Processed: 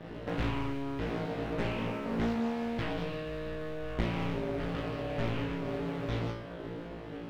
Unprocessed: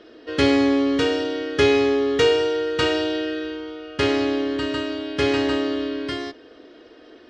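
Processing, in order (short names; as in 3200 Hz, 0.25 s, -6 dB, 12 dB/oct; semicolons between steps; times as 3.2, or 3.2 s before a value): cycle switcher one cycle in 2, muted; compressor 12:1, threshold -36 dBFS, peak gain reduction 21.5 dB; tone controls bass +13 dB, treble -15 dB; on a send: flutter echo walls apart 3 m, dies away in 0.65 s; on the sum: Doppler distortion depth 0.95 ms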